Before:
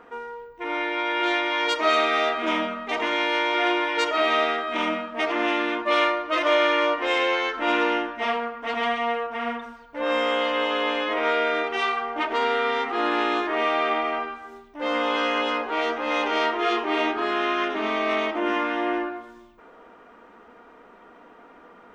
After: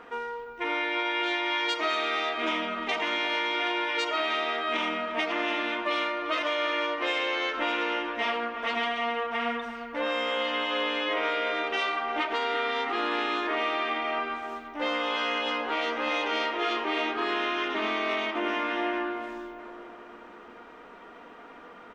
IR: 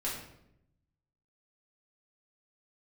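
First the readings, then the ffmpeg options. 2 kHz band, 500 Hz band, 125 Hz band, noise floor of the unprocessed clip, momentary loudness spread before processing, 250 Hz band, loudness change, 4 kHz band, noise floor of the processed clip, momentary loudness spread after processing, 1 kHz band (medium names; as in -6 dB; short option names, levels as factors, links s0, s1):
-3.0 dB, -6.0 dB, no reading, -50 dBFS, 8 LU, -5.5 dB, -4.5 dB, -1.5 dB, -48 dBFS, 14 LU, -5.0 dB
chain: -filter_complex "[0:a]equalizer=f=3500:w=0.58:g=6,acompressor=threshold=0.0501:ratio=6,asplit=2[s0][s1];[s1]adelay=352,lowpass=f=2000:p=1,volume=0.316,asplit=2[s2][s3];[s3]adelay=352,lowpass=f=2000:p=1,volume=0.55,asplit=2[s4][s5];[s5]adelay=352,lowpass=f=2000:p=1,volume=0.55,asplit=2[s6][s7];[s7]adelay=352,lowpass=f=2000:p=1,volume=0.55,asplit=2[s8][s9];[s9]adelay=352,lowpass=f=2000:p=1,volume=0.55,asplit=2[s10][s11];[s11]adelay=352,lowpass=f=2000:p=1,volume=0.55[s12];[s0][s2][s4][s6][s8][s10][s12]amix=inputs=7:normalize=0"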